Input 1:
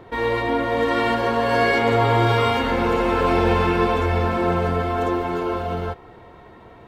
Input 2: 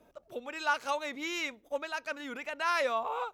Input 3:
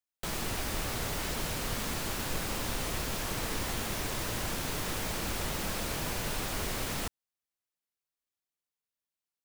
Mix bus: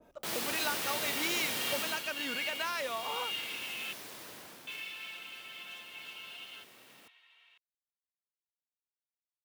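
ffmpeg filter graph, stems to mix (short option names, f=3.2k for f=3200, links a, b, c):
-filter_complex "[0:a]acompressor=threshold=-25dB:ratio=6,highpass=f=2.8k:t=q:w=4.5,adelay=700,volume=-10.5dB,asplit=3[a][b][c];[a]atrim=end=3.93,asetpts=PTS-STARTPTS,afade=t=out:st=3.926:d=0.004:c=hsin[d];[b]atrim=start=3.93:end=4.67,asetpts=PTS-STARTPTS,volume=0[e];[c]atrim=start=4.67,asetpts=PTS-STARTPTS,afade=t=in:d=0.004:c=hsin[f];[d][e][f]concat=n=3:v=0:a=1[g];[1:a]volume=1dB[h];[2:a]highpass=230,equalizer=f=7.2k:w=1.2:g=-4,volume=-2.5dB,afade=t=out:st=1.78:d=0.28:silence=0.298538,afade=t=out:st=4.3:d=0.63:silence=0.316228[i];[g][h]amix=inputs=2:normalize=0,acompressor=threshold=-34dB:ratio=6,volume=0dB[j];[i][j]amix=inputs=2:normalize=0,adynamicequalizer=threshold=0.00316:dfrequency=2100:dqfactor=0.7:tfrequency=2100:tqfactor=0.7:attack=5:release=100:ratio=0.375:range=3:mode=boostabove:tftype=highshelf"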